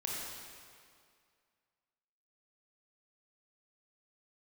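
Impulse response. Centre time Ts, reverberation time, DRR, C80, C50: 124 ms, 2.2 s, -4.0 dB, 0.0 dB, -2.0 dB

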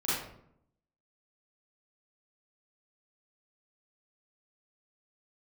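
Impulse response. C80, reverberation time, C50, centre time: 3.0 dB, 0.70 s, -2.5 dB, 73 ms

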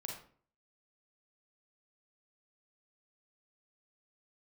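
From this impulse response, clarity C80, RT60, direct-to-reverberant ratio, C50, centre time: 8.5 dB, 0.50 s, -0.5 dB, 3.0 dB, 35 ms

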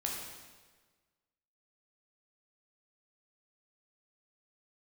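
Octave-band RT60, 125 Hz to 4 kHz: 1.5 s, 1.4 s, 1.5 s, 1.4 s, 1.3 s, 1.2 s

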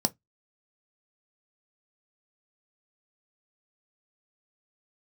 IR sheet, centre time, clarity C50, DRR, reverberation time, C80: 3 ms, 28.5 dB, 8.5 dB, 0.15 s, 41.5 dB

